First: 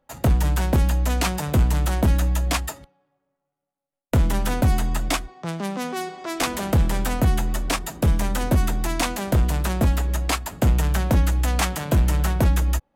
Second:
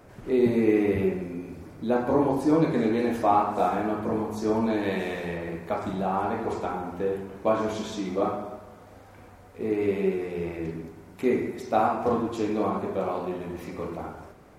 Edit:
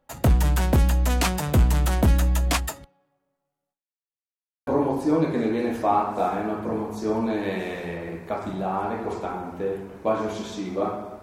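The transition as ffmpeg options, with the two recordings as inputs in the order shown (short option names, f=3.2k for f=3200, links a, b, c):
-filter_complex "[0:a]apad=whole_dur=11.22,atrim=end=11.22,asplit=2[a][b];[a]atrim=end=4.17,asetpts=PTS-STARTPTS,afade=t=out:st=3.72:d=0.45:c=exp[c];[b]atrim=start=4.17:end=4.67,asetpts=PTS-STARTPTS,volume=0[d];[1:a]atrim=start=2.07:end=8.62,asetpts=PTS-STARTPTS,afade=t=in:d=0.004:c=hsin[e];[c][d][e]concat=n=3:v=0:a=1"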